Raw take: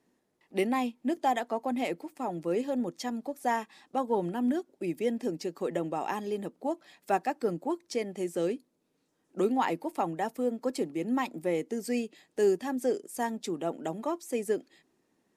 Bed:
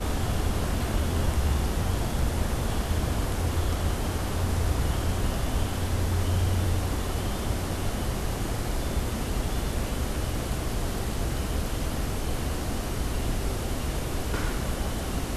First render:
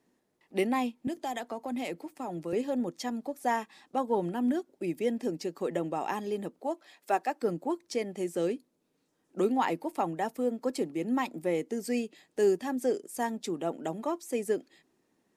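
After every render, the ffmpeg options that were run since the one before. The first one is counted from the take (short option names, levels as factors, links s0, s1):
-filter_complex "[0:a]asettb=1/sr,asplit=3[s0][s1][s2];[s0]atrim=end=1.074[s3];[s1]atrim=start=1.07:end=2.53,asetpts=PTS-STARTPTS,afade=t=in:d=0.004:c=qsin,afade=t=out:st=1.456:d=0.004:c=qsin,acrossover=split=170|3000[s4][s5][s6];[s5]acompressor=threshold=0.0251:ratio=4:attack=3.2:release=140:knee=2.83:detection=peak[s7];[s4][s7][s6]amix=inputs=3:normalize=0[s8];[s2]atrim=start=2.526[s9];[s3][s8]acrossfade=d=0.004:c1=hsin:c2=qsin[s10];[s10][s9]acrossfade=d=0.004:c1=qsin:c2=hsin,asettb=1/sr,asplit=3[s11][s12][s13];[s11]atrim=end=6.594[s14];[s12]atrim=start=6.59:end=7.42,asetpts=PTS-STARTPTS,afade=t=in:d=0.004:c=qsin,afade=t=out:st=0.826:d=0.004:c=qsin,highpass=320[s15];[s13]atrim=start=7.416[s16];[s14][s15]acrossfade=d=0.004:c1=hsin:c2=qsin[s17];[s17][s16]acrossfade=d=0.004:c1=qsin:c2=hsin"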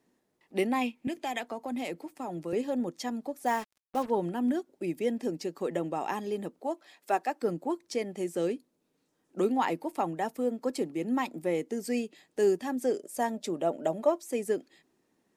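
-filter_complex "[0:a]asettb=1/sr,asplit=3[s0][s1][s2];[s0]atrim=end=0.814[s3];[s1]atrim=start=0.81:end=1.46,asetpts=PTS-STARTPTS,afade=t=in:d=0.004:c=qsin,afade=t=out:st=0.646:d=0.004:c=qsin,equalizer=f=2400:t=o:w=0.62:g=11[s4];[s2]atrim=start=1.456[s5];[s3][s4]acrossfade=d=0.004:c1=hsin:c2=qsin[s6];[s6][s5]acrossfade=d=0.004:c1=qsin:c2=hsin,asplit=3[s7][s8][s9];[s7]afade=t=out:st=3.45:d=0.02[s10];[s8]acrusher=bits=6:mix=0:aa=0.5,afade=t=in:st=3.45:d=0.02,afade=t=out:st=4.09:d=0.02[s11];[s9]afade=t=in:st=4.09:d=0.02[s12];[s10][s11][s12]amix=inputs=3:normalize=0,asettb=1/sr,asplit=3[s13][s14][s15];[s13]atrim=end=12.984[s16];[s14]atrim=start=12.98:end=14.23,asetpts=PTS-STARTPTS,afade=t=in:d=0.004:c=qsin,afade=t=out:st=1.246:d=0.004:c=qsin,equalizer=f=600:t=o:w=0.28:g=12.5[s17];[s15]atrim=start=14.226[s18];[s16][s17]acrossfade=d=0.004:c1=hsin:c2=qsin[s19];[s19][s18]acrossfade=d=0.004:c1=qsin:c2=hsin"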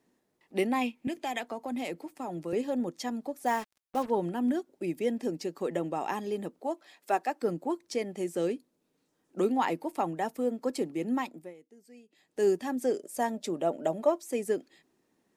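-filter_complex "[0:a]asplit=3[s0][s1][s2];[s0]atrim=end=11.54,asetpts=PTS-STARTPTS,afade=t=out:st=11.11:d=0.43:silence=0.0707946[s3];[s1]atrim=start=11.54:end=12.06,asetpts=PTS-STARTPTS,volume=0.0708[s4];[s2]atrim=start=12.06,asetpts=PTS-STARTPTS,afade=t=in:d=0.43:silence=0.0707946[s5];[s3][s4][s5]concat=n=3:v=0:a=1"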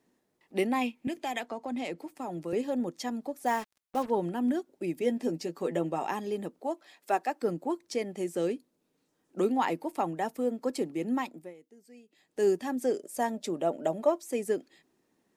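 -filter_complex "[0:a]asettb=1/sr,asplit=3[s0][s1][s2];[s0]atrim=end=1.464[s3];[s1]atrim=start=1.46:end=1.99,asetpts=PTS-STARTPTS,afade=t=in:d=0.004:c=qsin,afade=t=out:st=0.526:d=0.004:c=qsin,lowpass=7900[s4];[s2]atrim=start=1.986[s5];[s3][s4]acrossfade=d=0.004:c1=hsin:c2=qsin[s6];[s6][s5]acrossfade=d=0.004:c1=qsin:c2=hsin,asettb=1/sr,asplit=3[s7][s8][s9];[s7]atrim=end=5.004[s10];[s8]atrim=start=5:end=6.06,asetpts=PTS-STARTPTS,afade=t=in:d=0.004:c=qsin,afade=t=out:st=1.056:d=0.004:c=qsin,asplit=2[s11][s12];[s12]adelay=12,volume=0.398[s13];[s11][s13]amix=inputs=2:normalize=0,atrim=end_sample=46746[s14];[s9]atrim=start=6.056[s15];[s10][s14]acrossfade=d=0.004:c1=hsin:c2=qsin[s16];[s16][s15]acrossfade=d=0.004:c1=qsin:c2=hsin"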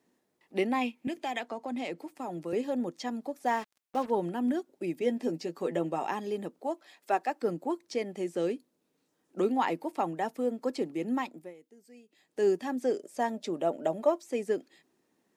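-filter_complex "[0:a]acrossover=split=6300[s0][s1];[s1]acompressor=threshold=0.00112:ratio=4:attack=1:release=60[s2];[s0][s2]amix=inputs=2:normalize=0,lowshelf=f=74:g=-11"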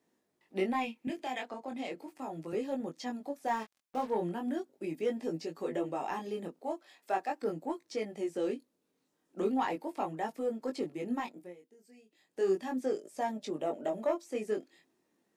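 -af "asoftclip=type=tanh:threshold=0.141,flanger=delay=18.5:depth=5.1:speed=0.38"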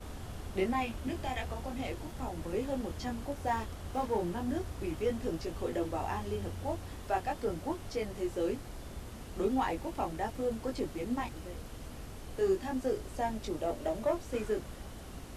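-filter_complex "[1:a]volume=0.158[s0];[0:a][s0]amix=inputs=2:normalize=0"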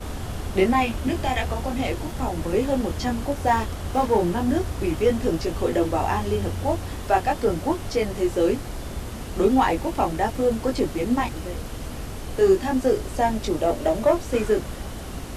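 -af "volume=3.98"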